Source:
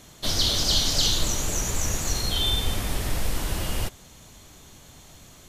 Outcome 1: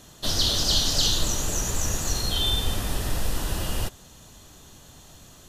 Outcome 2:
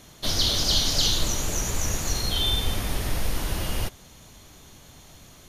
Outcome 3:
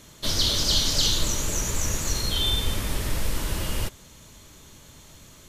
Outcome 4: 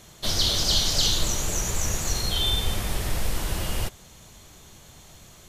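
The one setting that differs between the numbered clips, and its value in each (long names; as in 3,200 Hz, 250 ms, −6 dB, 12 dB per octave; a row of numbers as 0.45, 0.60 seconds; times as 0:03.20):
notch filter, centre frequency: 2,200, 7,700, 740, 270 Hertz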